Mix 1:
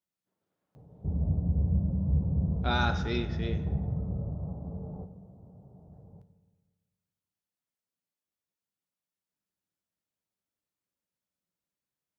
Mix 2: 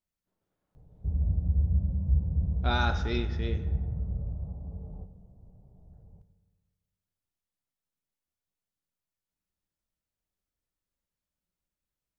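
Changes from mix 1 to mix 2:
background -8.0 dB; master: remove high-pass 130 Hz 12 dB/octave

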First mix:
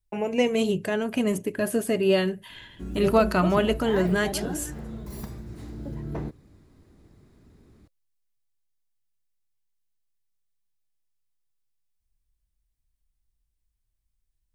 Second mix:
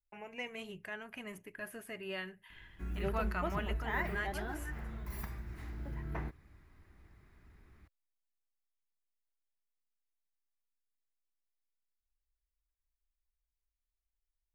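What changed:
speech -12.0 dB; master: add ten-band graphic EQ 125 Hz -8 dB, 250 Hz -10 dB, 500 Hz -10 dB, 2 kHz +6 dB, 4 kHz -7 dB, 8 kHz -10 dB

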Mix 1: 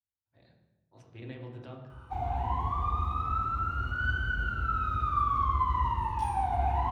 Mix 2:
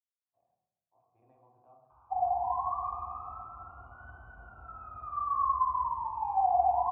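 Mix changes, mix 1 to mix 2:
background +8.0 dB; master: add cascade formant filter a

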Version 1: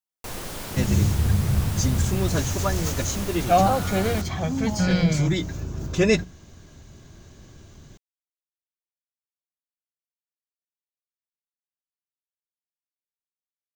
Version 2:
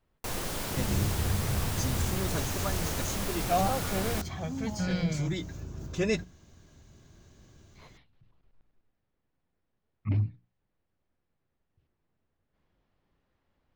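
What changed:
speech: unmuted; second sound -9.0 dB

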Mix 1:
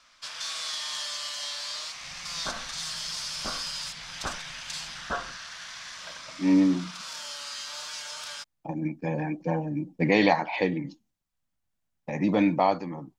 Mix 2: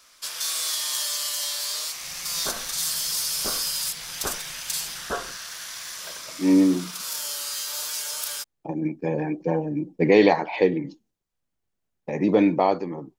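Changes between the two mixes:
first sound: remove distance through air 120 m; master: add peaking EQ 410 Hz +12 dB 0.6 oct

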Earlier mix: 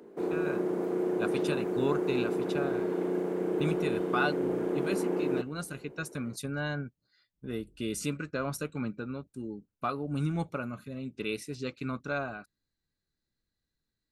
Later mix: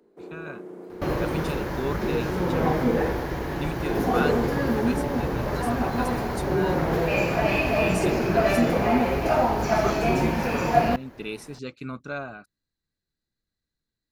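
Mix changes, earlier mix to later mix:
first sound -9.5 dB; second sound: unmuted

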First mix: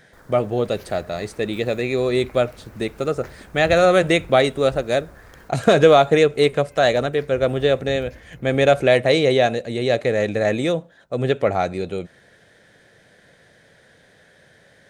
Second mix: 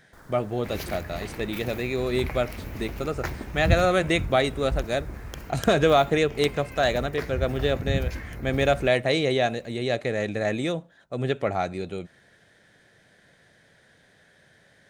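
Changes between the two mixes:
speech -4.5 dB; second sound +11.0 dB; master: add peaking EQ 500 Hz -4.5 dB 0.53 oct

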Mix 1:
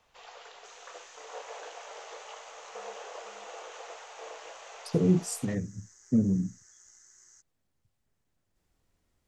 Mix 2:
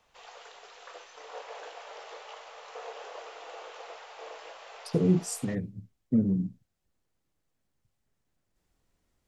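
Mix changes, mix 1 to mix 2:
second sound: muted; master: add peaking EQ 91 Hz -4 dB 0.39 oct

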